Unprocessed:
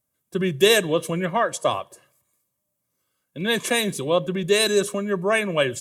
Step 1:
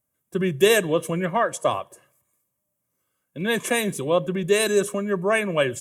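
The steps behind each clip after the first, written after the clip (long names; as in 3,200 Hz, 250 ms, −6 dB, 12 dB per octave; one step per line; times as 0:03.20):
parametric band 4,300 Hz −8.5 dB 0.75 octaves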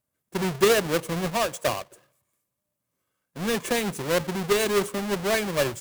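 each half-wave held at its own peak
level −7 dB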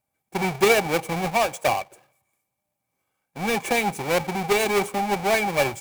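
hollow resonant body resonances 800/2,300 Hz, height 17 dB, ringing for 45 ms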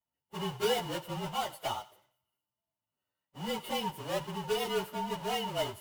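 partials spread apart or drawn together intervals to 111%
feedback echo with a high-pass in the loop 90 ms, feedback 38%, high-pass 830 Hz, level −17 dB
level −8.5 dB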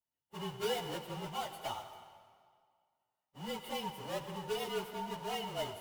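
convolution reverb RT60 2.0 s, pre-delay 93 ms, DRR 9.5 dB
level −5.5 dB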